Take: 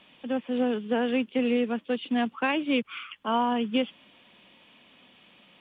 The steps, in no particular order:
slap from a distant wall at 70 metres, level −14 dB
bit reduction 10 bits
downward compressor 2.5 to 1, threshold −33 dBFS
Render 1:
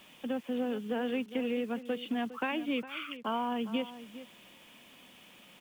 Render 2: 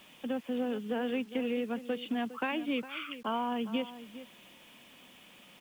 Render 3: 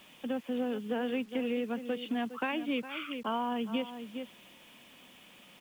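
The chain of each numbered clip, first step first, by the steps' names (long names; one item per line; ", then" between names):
downward compressor, then bit reduction, then slap from a distant wall
downward compressor, then slap from a distant wall, then bit reduction
slap from a distant wall, then downward compressor, then bit reduction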